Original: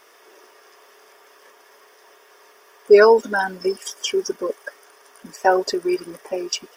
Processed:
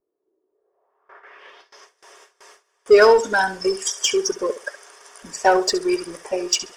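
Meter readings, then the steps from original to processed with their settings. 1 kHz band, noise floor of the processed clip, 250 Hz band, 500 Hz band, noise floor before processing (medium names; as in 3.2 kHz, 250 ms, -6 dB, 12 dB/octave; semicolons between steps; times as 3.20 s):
+1.0 dB, -73 dBFS, 0.0 dB, -0.5 dB, -52 dBFS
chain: bass shelf 91 Hz +10 dB; on a send: flutter echo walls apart 11.6 m, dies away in 0.29 s; on the sum: low-pass sweep 300 Hz -> 7.9 kHz, 0.44–1.92 s; peaking EQ 230 Hz -8.5 dB 0.98 oct; gate with hold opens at -39 dBFS; in parallel at -4 dB: hard clipper -19 dBFS, distortion -4 dB; on the sum: trim -1 dB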